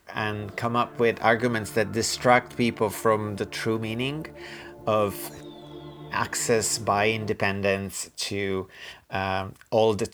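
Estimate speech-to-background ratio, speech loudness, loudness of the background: 18.5 dB, −25.5 LKFS, −44.0 LKFS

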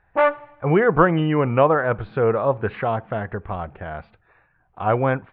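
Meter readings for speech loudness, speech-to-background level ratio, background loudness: −21.0 LKFS, 0.0 dB, −21.0 LKFS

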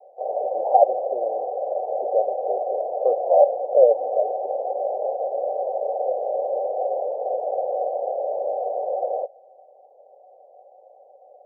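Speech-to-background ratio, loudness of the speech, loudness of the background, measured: 5.0 dB, −21.5 LKFS, −26.5 LKFS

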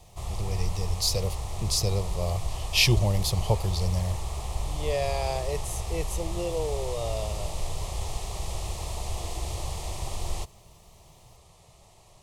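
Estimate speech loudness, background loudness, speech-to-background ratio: −29.0 LKFS, −35.0 LKFS, 6.0 dB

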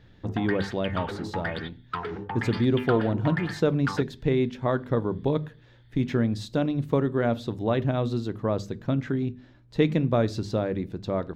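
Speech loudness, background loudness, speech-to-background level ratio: −27.0 LKFS, −35.0 LKFS, 8.0 dB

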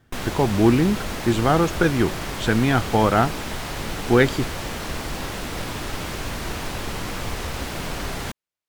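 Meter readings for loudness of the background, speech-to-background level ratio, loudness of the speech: −30.0 LKFS, 9.0 dB, −21.0 LKFS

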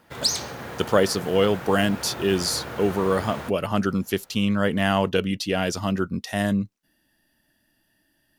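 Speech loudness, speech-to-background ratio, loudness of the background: −24.0 LKFS, 8.0 dB, −32.0 LKFS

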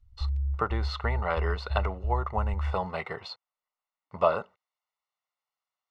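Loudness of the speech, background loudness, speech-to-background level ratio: −31.5 LKFS, −33.0 LKFS, 1.5 dB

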